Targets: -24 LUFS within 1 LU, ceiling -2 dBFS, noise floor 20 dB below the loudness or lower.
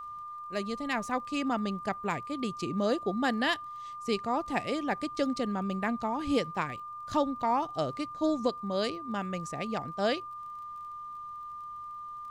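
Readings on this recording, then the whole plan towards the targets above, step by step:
ticks 24/s; steady tone 1200 Hz; tone level -39 dBFS; loudness -32.5 LUFS; peak -15.5 dBFS; loudness target -24.0 LUFS
-> de-click; notch 1200 Hz, Q 30; gain +8.5 dB

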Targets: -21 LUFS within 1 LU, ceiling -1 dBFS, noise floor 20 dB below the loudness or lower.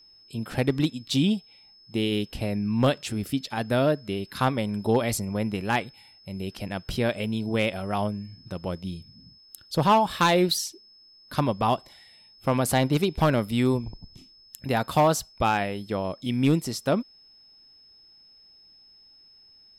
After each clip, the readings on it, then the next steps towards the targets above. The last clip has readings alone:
clipped 0.3%; flat tops at -13.0 dBFS; steady tone 5200 Hz; tone level -52 dBFS; loudness -26.0 LUFS; peak -13.0 dBFS; loudness target -21.0 LUFS
-> clip repair -13 dBFS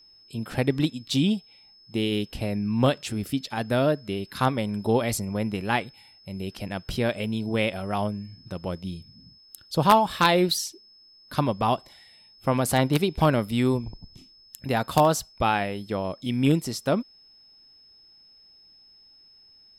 clipped 0.0%; steady tone 5200 Hz; tone level -52 dBFS
-> notch 5200 Hz, Q 30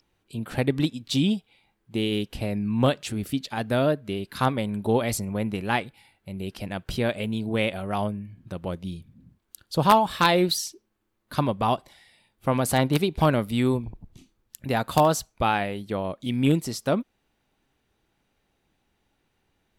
steady tone none; loudness -25.5 LUFS; peak -4.0 dBFS; loudness target -21.0 LUFS
-> gain +4.5 dB; limiter -1 dBFS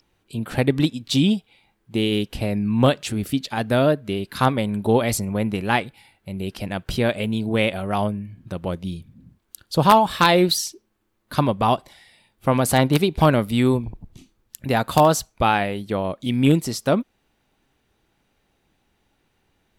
loudness -21.5 LUFS; peak -1.0 dBFS; noise floor -69 dBFS

